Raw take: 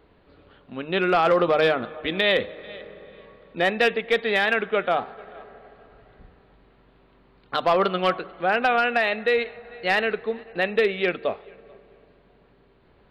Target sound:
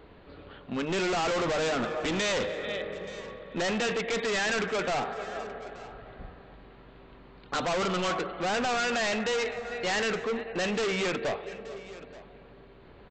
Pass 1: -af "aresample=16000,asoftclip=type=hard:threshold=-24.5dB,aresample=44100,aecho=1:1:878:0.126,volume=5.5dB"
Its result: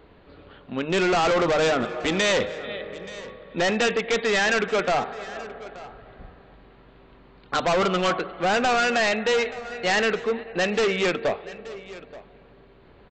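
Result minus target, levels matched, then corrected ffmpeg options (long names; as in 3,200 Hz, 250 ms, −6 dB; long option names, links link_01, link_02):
hard clipping: distortion −4 dB
-af "aresample=16000,asoftclip=type=hard:threshold=-32.5dB,aresample=44100,aecho=1:1:878:0.126,volume=5.5dB"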